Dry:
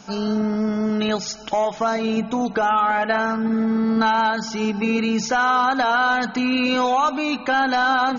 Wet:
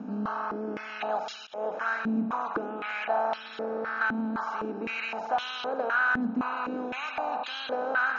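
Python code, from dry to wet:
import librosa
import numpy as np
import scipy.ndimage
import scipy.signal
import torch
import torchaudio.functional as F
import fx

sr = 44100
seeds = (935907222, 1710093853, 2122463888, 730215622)

y = fx.bin_compress(x, sr, power=0.4)
y = fx.auto_swell(y, sr, attack_ms=182.0)
y = fx.filter_held_bandpass(y, sr, hz=3.9, low_hz=240.0, high_hz=3300.0)
y = F.gain(torch.from_numpy(y), -6.0).numpy()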